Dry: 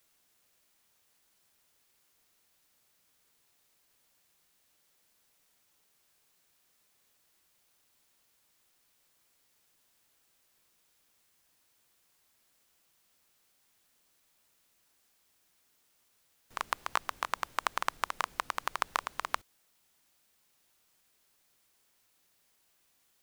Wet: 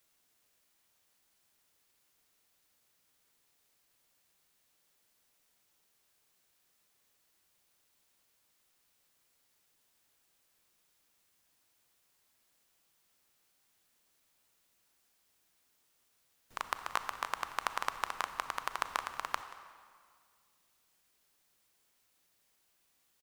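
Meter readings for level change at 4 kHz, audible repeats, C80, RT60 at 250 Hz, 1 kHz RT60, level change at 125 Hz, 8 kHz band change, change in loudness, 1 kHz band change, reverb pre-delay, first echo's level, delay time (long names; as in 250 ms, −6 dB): −2.5 dB, 1, 11.0 dB, 2.0 s, 2.0 s, −2.5 dB, −2.5 dB, −2.5 dB, −2.5 dB, 30 ms, −18.5 dB, 181 ms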